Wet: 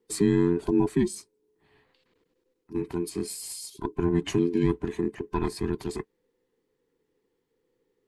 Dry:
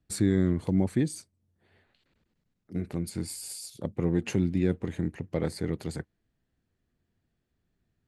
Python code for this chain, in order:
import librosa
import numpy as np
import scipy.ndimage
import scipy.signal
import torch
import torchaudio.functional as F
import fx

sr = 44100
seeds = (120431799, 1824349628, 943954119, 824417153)

y = fx.band_invert(x, sr, width_hz=500)
y = y * librosa.db_to_amplitude(2.0)